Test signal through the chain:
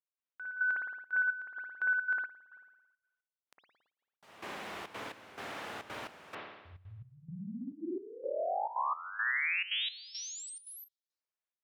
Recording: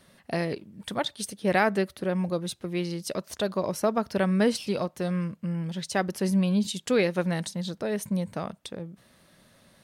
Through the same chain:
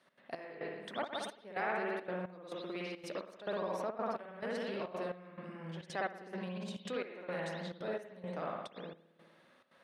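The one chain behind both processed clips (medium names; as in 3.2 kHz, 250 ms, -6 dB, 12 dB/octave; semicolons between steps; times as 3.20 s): treble shelf 3.4 kHz -11 dB; spring tank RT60 1.1 s, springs 55 ms, chirp 65 ms, DRR -5 dB; peak limiter -17.5 dBFS; frequency weighting A; trance gate "x.xx...xxxx" 173 bpm -12 dB; trim -7.5 dB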